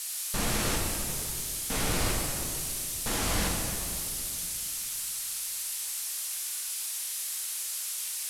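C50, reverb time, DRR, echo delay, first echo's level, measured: 1.0 dB, 2.6 s, -1.5 dB, none, none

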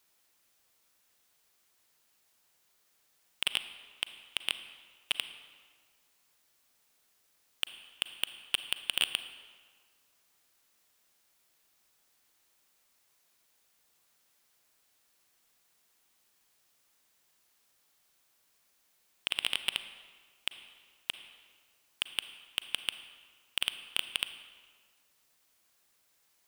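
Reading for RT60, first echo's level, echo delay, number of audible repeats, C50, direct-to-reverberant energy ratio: 1.8 s, none, none, none, 11.0 dB, 10.5 dB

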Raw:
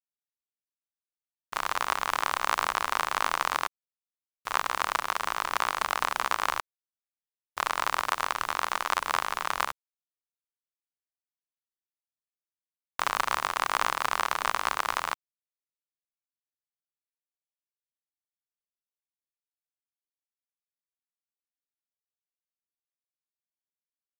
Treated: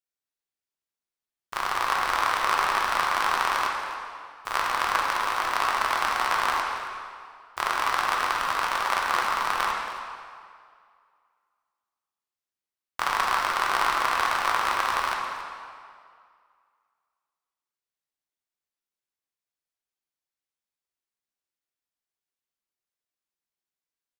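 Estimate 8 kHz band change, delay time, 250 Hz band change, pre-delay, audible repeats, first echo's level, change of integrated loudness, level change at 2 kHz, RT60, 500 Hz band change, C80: +0.5 dB, 0.275 s, +4.0 dB, 3 ms, 1, -15.0 dB, +3.5 dB, +4.5 dB, 2.1 s, +3.5 dB, 2.5 dB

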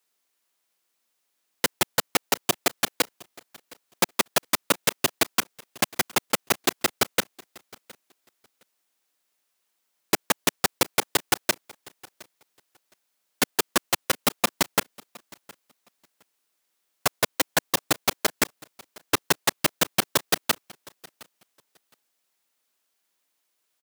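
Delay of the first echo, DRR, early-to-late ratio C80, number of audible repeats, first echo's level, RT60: 0.714 s, none, none, 1, -23.5 dB, none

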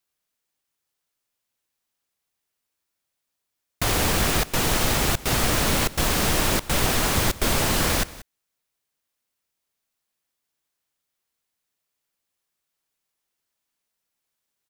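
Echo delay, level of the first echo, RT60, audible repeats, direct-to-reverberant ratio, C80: 0.184 s, -19.0 dB, none, 1, none, none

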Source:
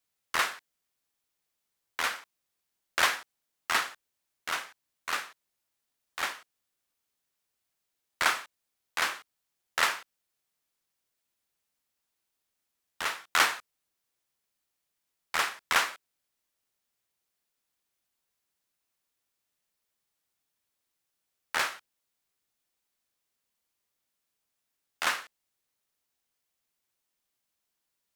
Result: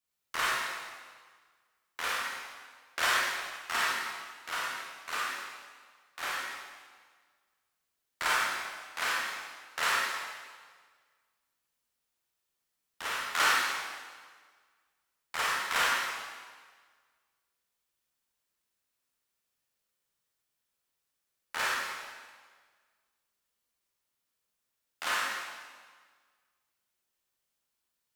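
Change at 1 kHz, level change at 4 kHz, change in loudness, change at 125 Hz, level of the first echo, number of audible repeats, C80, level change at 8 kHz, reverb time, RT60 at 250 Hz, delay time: +0.5 dB, -0.5 dB, -1.5 dB, n/a, none, none, 0.0 dB, -0.5 dB, 1.6 s, 1.6 s, none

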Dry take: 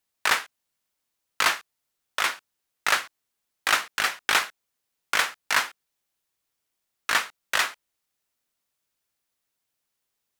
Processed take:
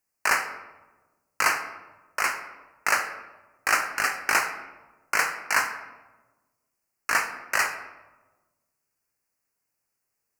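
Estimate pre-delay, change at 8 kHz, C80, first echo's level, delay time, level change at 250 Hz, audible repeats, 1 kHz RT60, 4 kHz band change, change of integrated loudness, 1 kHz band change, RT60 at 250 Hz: 13 ms, +0.5 dB, 11.0 dB, none, none, +1.0 dB, none, 1.1 s, -7.5 dB, -0.5 dB, +1.0 dB, 1.5 s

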